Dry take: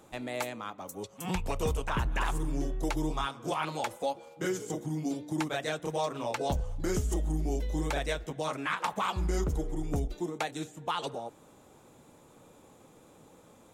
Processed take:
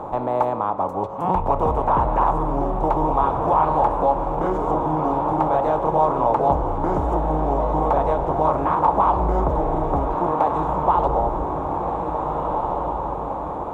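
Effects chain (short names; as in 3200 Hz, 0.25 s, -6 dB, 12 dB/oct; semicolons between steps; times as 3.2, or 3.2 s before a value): per-bin compression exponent 0.6; diffused feedback echo 1.672 s, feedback 51%, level -6 dB; in parallel at -1.5 dB: limiter -22.5 dBFS, peak gain reduction 8.5 dB; on the sum: EQ curve 350 Hz 0 dB, 970 Hz +12 dB, 1700 Hz -12 dB, 7200 Hz -26 dB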